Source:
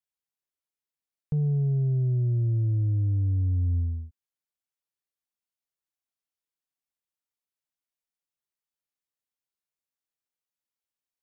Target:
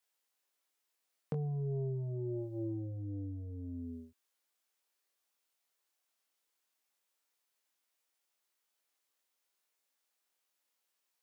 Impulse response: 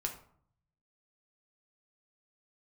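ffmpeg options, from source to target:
-af "flanger=delay=19.5:depth=2.8:speed=0.26,acompressor=threshold=-33dB:ratio=5,highpass=350,volume=13dB"

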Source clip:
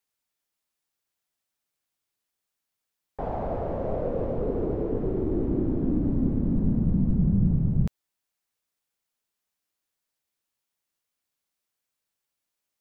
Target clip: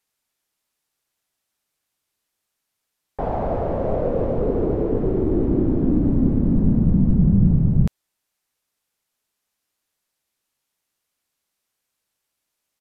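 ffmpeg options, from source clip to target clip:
-af "aresample=32000,aresample=44100,volume=6.5dB"

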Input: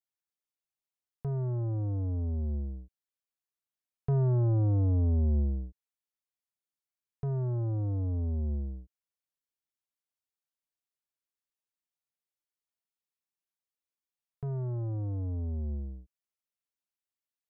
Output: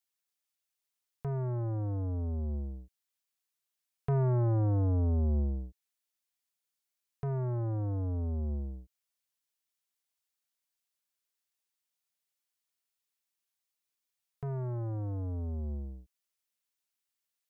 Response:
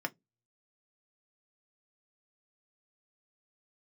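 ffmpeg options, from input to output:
-filter_complex "[0:a]tiltshelf=f=810:g=-7.5,asplit=2[a][b];[b]adynamicsmooth=sensitivity=6:basefreq=950,volume=-2dB[c];[a][c]amix=inputs=2:normalize=0"

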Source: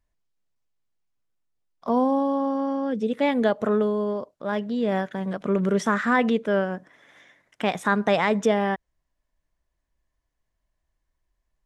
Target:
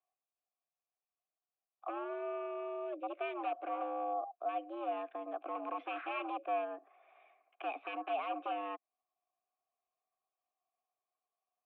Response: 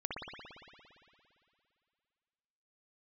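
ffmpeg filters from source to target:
-filter_complex "[0:a]acrossover=split=380|1100[a][b][c];[b]acompressor=threshold=-39dB:ratio=6[d];[a][d][c]amix=inputs=3:normalize=0,asettb=1/sr,asplit=3[e][f][g];[e]atrim=end=3.734[h];[f]atrim=start=3.73:end=4.31,asetpts=PTS-STARTPTS,afade=t=in:d=0.004:c=qsin,afade=t=out:st=0.576:d=0.004:c=qsin,aeval=exprs='val(0)+0.0112*sin(2*PI*700*n/s)':c=same[i];[g]atrim=start=4.306[j];[h][i]acrossfade=d=0.004:c1=hsin:c2=qsin[k];[k][j]acrossfade=d=0.004:c1=qsin:c2=hsin,aeval=exprs='0.075*(abs(mod(val(0)/0.075+3,4)-2)-1)':c=same,highpass=f=180:t=q:w=0.5412,highpass=f=180:t=q:w=1.307,lowpass=f=3k:t=q:w=0.5176,lowpass=f=3k:t=q:w=0.7071,lowpass=f=3k:t=q:w=1.932,afreqshift=100,asplit=3[l][m][n];[l]bandpass=f=730:t=q:w=8,volume=0dB[o];[m]bandpass=f=1.09k:t=q:w=8,volume=-6dB[p];[n]bandpass=f=2.44k:t=q:w=8,volume=-9dB[q];[o][p][q]amix=inputs=3:normalize=0,volume=2.5dB"

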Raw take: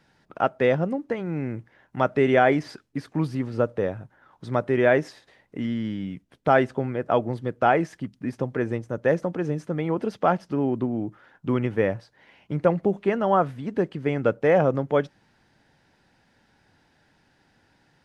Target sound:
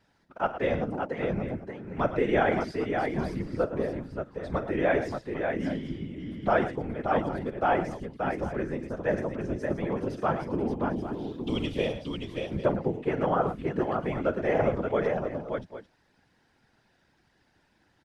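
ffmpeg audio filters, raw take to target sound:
-filter_complex "[0:a]asettb=1/sr,asplit=3[a][b][c];[a]atrim=end=10.964[d];[b]atrim=start=10.96:end=11.93,asetpts=PTS-STARTPTS,afade=t=in:d=0.004:c=qsin,afade=t=out:st=0.966:d=0.004:c=qsin,highshelf=f=2.5k:t=q:w=3:g=13.5[e];[c]atrim=start=11.926[f];[d][e]acrossfade=d=0.004:c1=hsin:c2=qsin[g];[g][f]acrossfade=d=0.004:c1=qsin:c2=hsin,aecho=1:1:47|110|578|797:0.211|0.282|0.562|0.188,afftfilt=real='hypot(re,im)*cos(2*PI*random(0))':imag='hypot(re,im)*sin(2*PI*random(1))':win_size=512:overlap=0.75"

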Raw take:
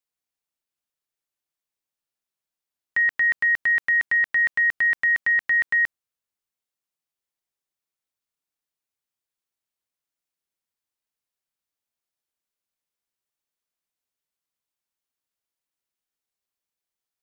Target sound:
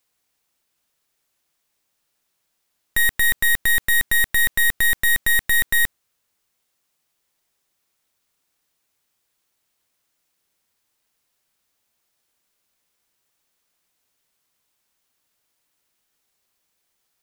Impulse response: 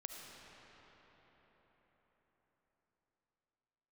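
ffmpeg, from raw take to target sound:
-af "aeval=exprs='0.168*(cos(1*acos(clip(val(0)/0.168,-1,1)))-cos(1*PI/2))+0.0188*(cos(3*acos(clip(val(0)/0.168,-1,1)))-cos(3*PI/2))+0.0211*(cos(6*acos(clip(val(0)/0.168,-1,1)))-cos(6*PI/2))+0.0841*(cos(7*acos(clip(val(0)/0.168,-1,1)))-cos(7*PI/2))+0.0237*(cos(8*acos(clip(val(0)/0.168,-1,1)))-cos(8*PI/2))':c=same,aeval=exprs='clip(val(0),-1,0.0133)':c=same,volume=6.5dB"

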